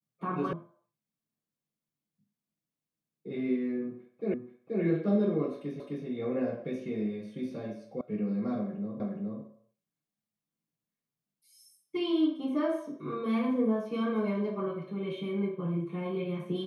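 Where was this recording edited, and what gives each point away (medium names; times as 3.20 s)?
0.53 s: sound stops dead
4.34 s: repeat of the last 0.48 s
5.80 s: repeat of the last 0.26 s
8.01 s: sound stops dead
9.00 s: repeat of the last 0.42 s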